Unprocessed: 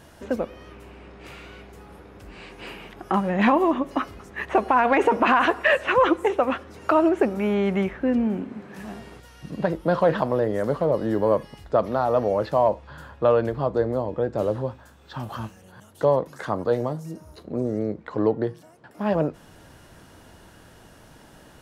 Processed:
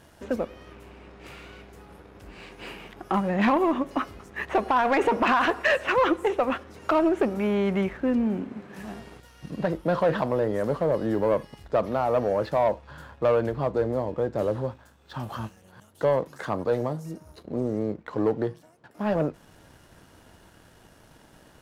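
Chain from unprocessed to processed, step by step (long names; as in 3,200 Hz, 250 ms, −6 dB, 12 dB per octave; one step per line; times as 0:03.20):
leveller curve on the samples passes 1
level −5 dB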